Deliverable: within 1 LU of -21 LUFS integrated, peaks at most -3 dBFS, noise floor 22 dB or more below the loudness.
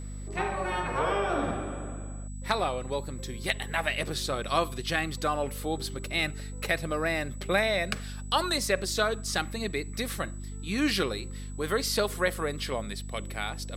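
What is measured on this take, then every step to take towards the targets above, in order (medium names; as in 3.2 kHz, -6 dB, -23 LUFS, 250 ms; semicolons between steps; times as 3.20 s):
hum 50 Hz; highest harmonic 250 Hz; hum level -36 dBFS; steady tone 7.9 kHz; tone level -50 dBFS; loudness -30.0 LUFS; peak level -10.0 dBFS; loudness target -21.0 LUFS
-> hum notches 50/100/150/200/250 Hz; band-stop 7.9 kHz, Q 30; trim +9 dB; peak limiter -3 dBFS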